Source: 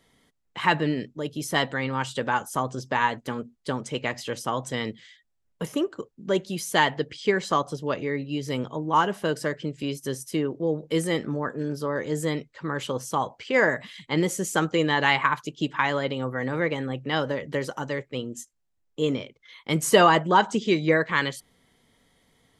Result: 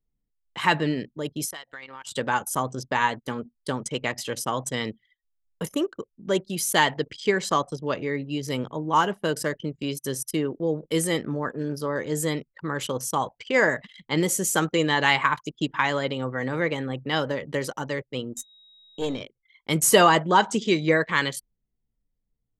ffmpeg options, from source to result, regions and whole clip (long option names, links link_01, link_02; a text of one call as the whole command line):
ffmpeg -i in.wav -filter_complex "[0:a]asettb=1/sr,asplit=3[link_01][link_02][link_03];[link_01]atrim=end=1.454[link_04];[link_02]atrim=start=1.45:end=2.12,asetpts=PTS-STARTPTS,afade=type=in:duration=0.004:curve=qsin,afade=type=out:start_time=0.666:duration=0.004:curve=qsin,highpass=frequency=1300:poles=1,acompressor=threshold=-35dB:ratio=8:attack=3.2:release=140:knee=1:detection=peak[link_05];[link_03]atrim=start=2.116[link_06];[link_04][link_05]acrossfade=duration=0.004:curve1=hsin:curve2=qsin[link_07];[link_07][link_06]acrossfade=duration=0.004:curve1=qsin:curve2=hsin,asettb=1/sr,asplit=3[link_08][link_09][link_10];[link_08]atrim=end=18.374[link_11];[link_09]atrim=start=18.37:end=19.21,asetpts=PTS-STARTPTS,afade=type=in:duration=0.004:curve=qsin,afade=type=out:start_time=0.836:duration=0.004:curve=qsin,aeval=exprs='val(0)+0.00501*sin(2*PI*3800*n/s)':channel_layout=same,acompressor=mode=upward:threshold=-45dB:ratio=2.5:attack=3.2:release=140:knee=2.83:detection=peak,aeval=exprs='(tanh(8.91*val(0)+0.55)-tanh(0.55))/8.91':channel_layout=same[link_12];[link_10]atrim=start=19.206[link_13];[link_11][link_12]acrossfade=duration=0.004:curve1=hsin:curve2=qsin[link_14];[link_14][link_13]acrossfade=duration=0.004:curve1=qsin:curve2=hsin,anlmdn=0.398,highshelf=frequency=6700:gain=12" out.wav